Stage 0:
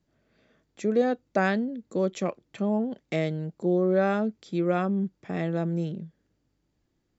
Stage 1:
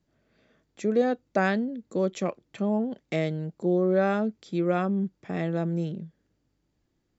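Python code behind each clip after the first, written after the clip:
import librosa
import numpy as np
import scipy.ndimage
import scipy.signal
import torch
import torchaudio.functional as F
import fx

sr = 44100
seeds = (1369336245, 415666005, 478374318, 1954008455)

y = x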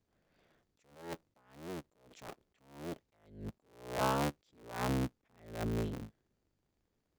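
y = fx.cycle_switch(x, sr, every=3, mode='inverted')
y = fx.attack_slew(y, sr, db_per_s=110.0)
y = y * librosa.db_to_amplitude(-6.5)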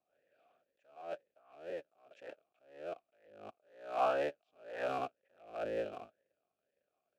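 y = fx.cycle_switch(x, sr, every=2, mode='inverted')
y = fx.vowel_sweep(y, sr, vowels='a-e', hz=2.0)
y = y * librosa.db_to_amplitude(10.0)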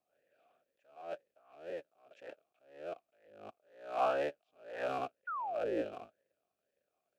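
y = fx.spec_paint(x, sr, seeds[0], shape='fall', start_s=5.27, length_s=0.55, low_hz=280.0, high_hz=1500.0, level_db=-38.0)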